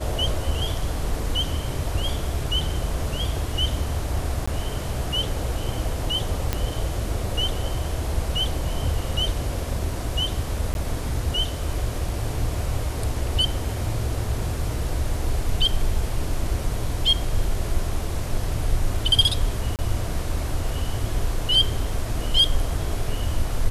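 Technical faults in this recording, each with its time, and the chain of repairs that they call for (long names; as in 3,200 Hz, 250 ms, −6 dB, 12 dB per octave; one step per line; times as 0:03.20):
0:04.46–0:04.47: drop-out 15 ms
0:06.53: click −8 dBFS
0:10.74–0:10.75: drop-out 11 ms
0:19.76–0:19.79: drop-out 28 ms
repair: click removal
repair the gap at 0:04.46, 15 ms
repair the gap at 0:10.74, 11 ms
repair the gap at 0:19.76, 28 ms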